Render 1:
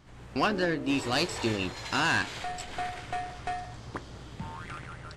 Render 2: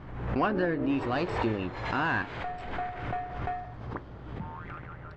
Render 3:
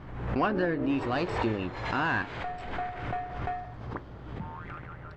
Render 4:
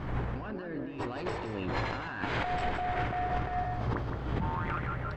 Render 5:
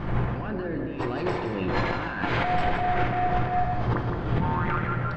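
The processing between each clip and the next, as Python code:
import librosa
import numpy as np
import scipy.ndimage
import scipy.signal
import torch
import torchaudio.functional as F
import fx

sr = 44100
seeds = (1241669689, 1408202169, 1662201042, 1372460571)

y1 = scipy.signal.sosfilt(scipy.signal.butter(2, 1700.0, 'lowpass', fs=sr, output='sos'), x)
y1 = fx.pre_swell(y1, sr, db_per_s=51.0)
y2 = fx.high_shelf(y1, sr, hz=5500.0, db=4.0)
y3 = fx.over_compress(y2, sr, threshold_db=-37.0, ratio=-1.0)
y3 = y3 + 10.0 ** (-7.5 / 20.0) * np.pad(y3, (int(164 * sr / 1000.0), 0))[:len(y3)]
y3 = y3 * 10.0 ** (2.5 / 20.0)
y4 = fx.air_absorb(y3, sr, metres=70.0)
y4 = fx.room_shoebox(y4, sr, seeds[0], volume_m3=1200.0, walls='mixed', distance_m=0.82)
y4 = y4 * 10.0 ** (6.0 / 20.0)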